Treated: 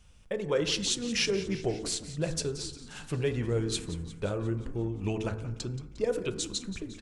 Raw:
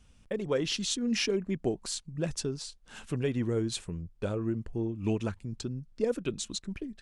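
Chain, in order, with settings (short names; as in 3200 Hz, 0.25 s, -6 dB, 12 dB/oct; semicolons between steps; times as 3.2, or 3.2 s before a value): bell 260 Hz -9 dB 0.47 oct; de-hum 54.4 Hz, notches 33; on a send: frequency-shifting echo 0.177 s, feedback 63%, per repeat -78 Hz, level -15 dB; on the sum: FDN reverb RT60 1.2 s, low-frequency decay 1×, high-frequency decay 0.35×, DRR 12.5 dB; gain +2.5 dB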